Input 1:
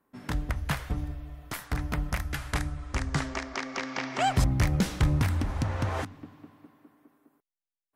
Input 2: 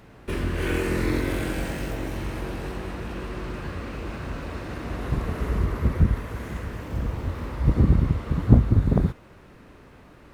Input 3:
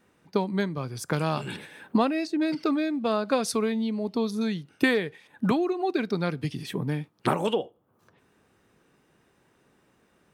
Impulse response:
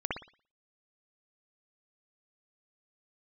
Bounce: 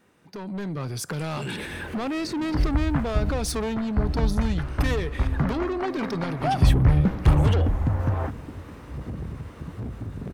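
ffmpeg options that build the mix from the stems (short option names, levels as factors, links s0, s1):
-filter_complex "[0:a]lowpass=1300,lowshelf=f=130:g=7,adelay=2250,volume=0.447[s0];[1:a]asoftclip=type=hard:threshold=0.168,highpass=63,adelay=1300,volume=0.126[s1];[2:a]alimiter=limit=0.158:level=0:latency=1:release=128,volume=1.33[s2];[s1][s2]amix=inputs=2:normalize=0,asoftclip=type=tanh:threshold=0.0422,alimiter=level_in=3.16:limit=0.0631:level=0:latency=1:release=64,volume=0.316,volume=1[s3];[s0][s3]amix=inputs=2:normalize=0,dynaudnorm=f=220:g=5:m=2.82"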